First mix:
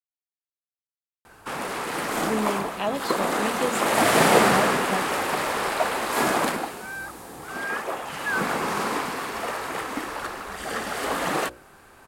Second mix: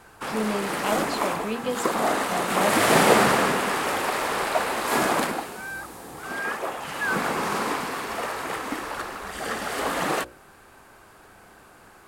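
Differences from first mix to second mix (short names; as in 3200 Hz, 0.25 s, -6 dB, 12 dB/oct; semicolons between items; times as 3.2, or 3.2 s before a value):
speech: entry -1.95 s; background: entry -1.25 s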